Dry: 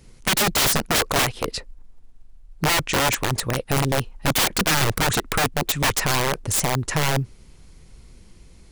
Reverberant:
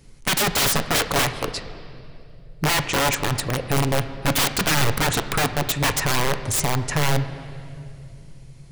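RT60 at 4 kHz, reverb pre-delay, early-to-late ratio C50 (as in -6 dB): 2.2 s, 7 ms, 11.5 dB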